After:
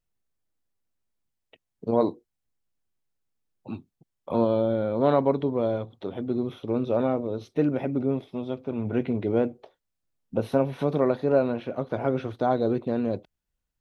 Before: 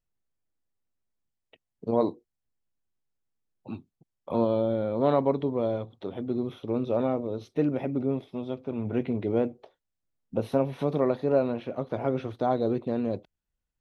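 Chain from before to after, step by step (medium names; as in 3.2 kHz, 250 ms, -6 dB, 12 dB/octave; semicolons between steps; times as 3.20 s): dynamic bell 1.5 kHz, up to +5 dB, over -59 dBFS, Q 7.8; trim +2 dB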